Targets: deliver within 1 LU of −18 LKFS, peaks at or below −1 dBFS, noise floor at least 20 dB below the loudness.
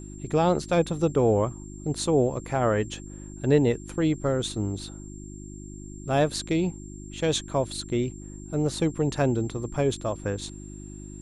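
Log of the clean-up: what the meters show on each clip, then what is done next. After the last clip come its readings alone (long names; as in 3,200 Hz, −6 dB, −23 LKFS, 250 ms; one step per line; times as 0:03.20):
mains hum 50 Hz; hum harmonics up to 350 Hz; level of the hum −39 dBFS; interfering tone 7,400 Hz; level of the tone −48 dBFS; integrated loudness −26.5 LKFS; sample peak −9.5 dBFS; target loudness −18.0 LKFS
→ hum removal 50 Hz, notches 7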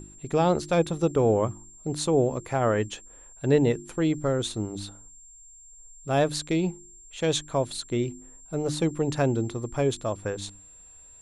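mains hum none found; interfering tone 7,400 Hz; level of the tone −48 dBFS
→ notch filter 7,400 Hz, Q 30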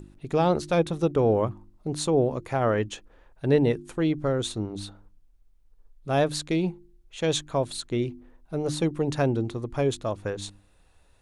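interfering tone none found; integrated loudness −26.5 LKFS; sample peak −10.0 dBFS; target loudness −18.0 LKFS
→ level +8.5 dB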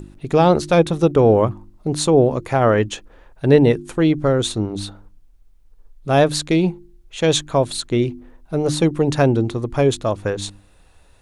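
integrated loudness −18.0 LKFS; sample peak −1.5 dBFS; background noise floor −51 dBFS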